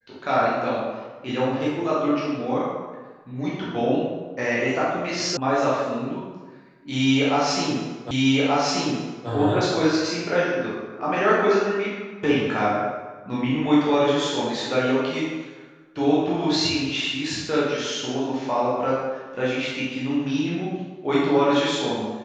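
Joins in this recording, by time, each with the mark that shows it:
5.37 sound cut off
8.11 repeat of the last 1.18 s

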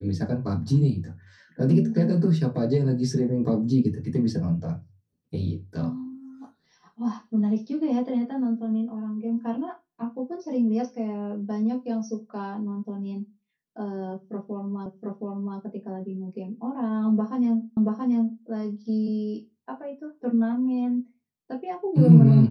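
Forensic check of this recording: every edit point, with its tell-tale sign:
14.86 repeat of the last 0.72 s
17.77 repeat of the last 0.68 s

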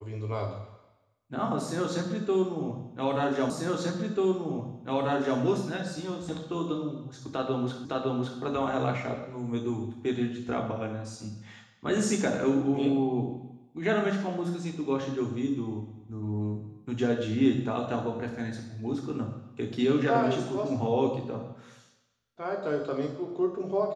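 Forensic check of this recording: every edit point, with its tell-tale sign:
3.5 repeat of the last 1.89 s
7.85 repeat of the last 0.56 s

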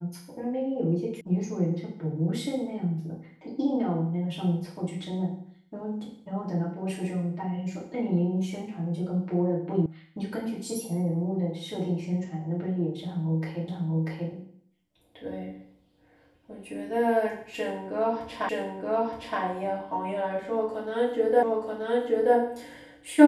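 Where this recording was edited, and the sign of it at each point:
1.21 sound cut off
9.86 sound cut off
13.68 repeat of the last 0.64 s
18.49 repeat of the last 0.92 s
21.43 repeat of the last 0.93 s

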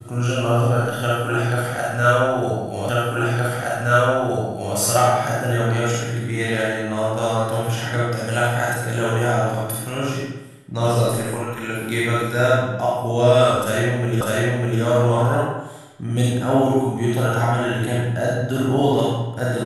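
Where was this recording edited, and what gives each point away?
2.89 repeat of the last 1.87 s
14.21 repeat of the last 0.6 s

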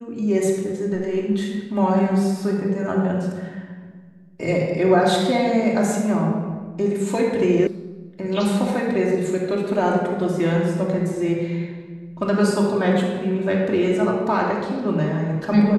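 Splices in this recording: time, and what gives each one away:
7.67 sound cut off

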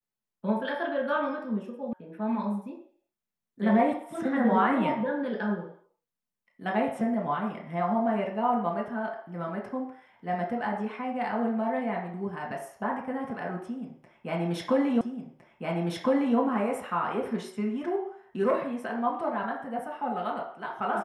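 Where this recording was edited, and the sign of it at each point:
1.93 sound cut off
15.01 repeat of the last 1.36 s

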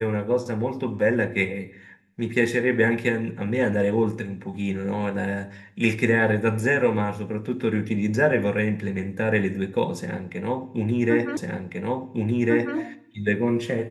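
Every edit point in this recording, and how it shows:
11.37 repeat of the last 1.4 s

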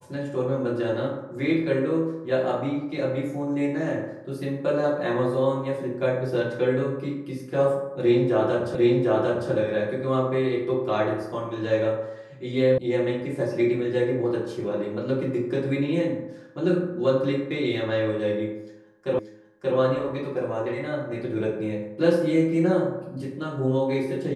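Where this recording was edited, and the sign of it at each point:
8.75 repeat of the last 0.75 s
12.78 sound cut off
19.19 repeat of the last 0.58 s

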